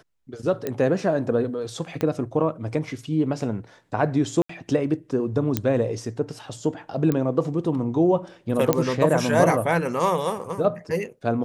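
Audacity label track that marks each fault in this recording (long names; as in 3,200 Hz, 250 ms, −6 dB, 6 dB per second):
0.670000	0.670000	click −13 dBFS
2.010000	2.010000	click −13 dBFS
4.420000	4.490000	drop-out 74 ms
5.570000	5.570000	click −7 dBFS
7.120000	7.120000	click −12 dBFS
8.730000	8.730000	click −5 dBFS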